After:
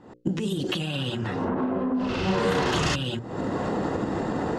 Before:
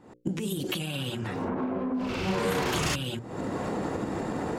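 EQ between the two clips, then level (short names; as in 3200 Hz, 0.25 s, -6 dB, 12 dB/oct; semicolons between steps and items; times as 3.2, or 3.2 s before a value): LPF 5900 Hz 12 dB/oct; notch 2300 Hz, Q 8.1; +4.0 dB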